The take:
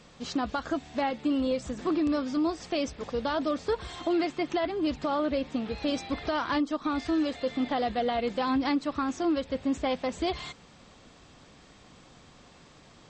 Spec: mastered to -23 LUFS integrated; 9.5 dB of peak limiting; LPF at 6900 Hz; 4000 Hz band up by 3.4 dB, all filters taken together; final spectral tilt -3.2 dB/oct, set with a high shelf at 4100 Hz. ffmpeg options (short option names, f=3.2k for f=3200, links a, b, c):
-af "lowpass=6.9k,equalizer=f=4k:t=o:g=7.5,highshelf=f=4.1k:g=-5,volume=12.5dB,alimiter=limit=-14.5dB:level=0:latency=1"